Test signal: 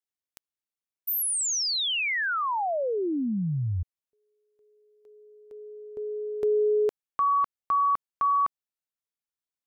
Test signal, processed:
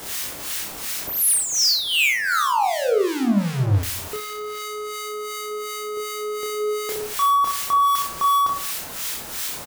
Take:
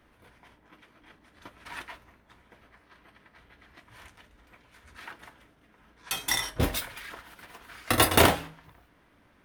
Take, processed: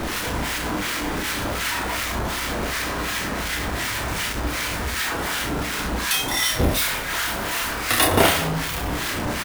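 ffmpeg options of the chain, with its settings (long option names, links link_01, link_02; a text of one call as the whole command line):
ffmpeg -i in.wav -filter_complex "[0:a]aeval=exprs='val(0)+0.5*0.0841*sgn(val(0))':channel_layout=same,aecho=1:1:30|67.5|114.4|173|246.2:0.631|0.398|0.251|0.158|0.1,acrossover=split=1200[link_01][link_02];[link_01]aeval=exprs='val(0)*(1-0.7/2+0.7/2*cos(2*PI*2.7*n/s))':channel_layout=same[link_03];[link_02]aeval=exprs='val(0)*(1-0.7/2-0.7/2*cos(2*PI*2.7*n/s))':channel_layout=same[link_04];[link_03][link_04]amix=inputs=2:normalize=0,volume=2.5dB" out.wav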